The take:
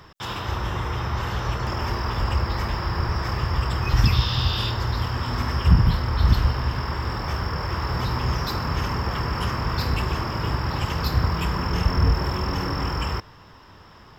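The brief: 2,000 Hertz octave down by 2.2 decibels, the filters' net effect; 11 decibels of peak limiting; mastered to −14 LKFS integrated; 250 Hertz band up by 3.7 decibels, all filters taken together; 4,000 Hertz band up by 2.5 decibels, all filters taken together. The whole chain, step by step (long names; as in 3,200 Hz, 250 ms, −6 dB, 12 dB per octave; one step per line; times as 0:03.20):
parametric band 250 Hz +5.5 dB
parametric band 2,000 Hz −4 dB
parametric band 4,000 Hz +4.5 dB
level +11 dB
brickwall limiter −2.5 dBFS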